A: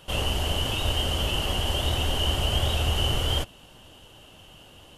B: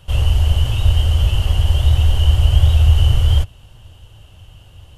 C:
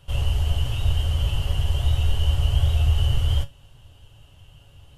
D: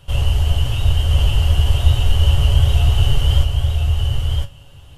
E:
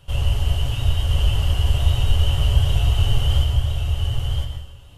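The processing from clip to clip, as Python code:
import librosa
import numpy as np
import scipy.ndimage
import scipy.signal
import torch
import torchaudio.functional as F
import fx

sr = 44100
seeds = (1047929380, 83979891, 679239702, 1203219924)

y1 = fx.low_shelf_res(x, sr, hz=150.0, db=14.0, q=1.5)
y1 = F.gain(torch.from_numpy(y1), -1.0).numpy()
y2 = fx.comb_fb(y1, sr, f0_hz=140.0, decay_s=0.2, harmonics='all', damping=0.0, mix_pct=70)
y3 = y2 + 10.0 ** (-4.0 / 20.0) * np.pad(y2, (int(1010 * sr / 1000.0), 0))[:len(y2)]
y3 = F.gain(torch.from_numpy(y3), 6.0).numpy()
y4 = fx.rev_plate(y3, sr, seeds[0], rt60_s=0.73, hf_ratio=0.9, predelay_ms=105, drr_db=5.5)
y4 = F.gain(torch.from_numpy(y4), -4.0).numpy()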